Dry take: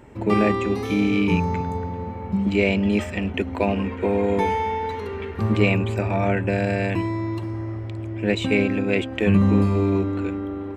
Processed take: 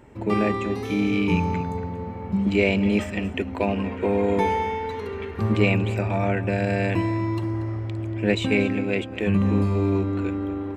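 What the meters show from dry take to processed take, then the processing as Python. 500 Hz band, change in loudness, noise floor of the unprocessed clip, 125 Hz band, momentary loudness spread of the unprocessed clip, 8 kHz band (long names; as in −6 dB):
−1.5 dB, −1.5 dB, −32 dBFS, −1.0 dB, 10 LU, can't be measured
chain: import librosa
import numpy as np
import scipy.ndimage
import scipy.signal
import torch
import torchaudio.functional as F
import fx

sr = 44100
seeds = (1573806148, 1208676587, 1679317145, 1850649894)

y = fx.rider(x, sr, range_db=10, speed_s=2.0)
y = y + 10.0 ** (-15.5 / 20.0) * np.pad(y, (int(235 * sr / 1000.0), 0))[:len(y)]
y = y * 10.0 ** (-2.5 / 20.0)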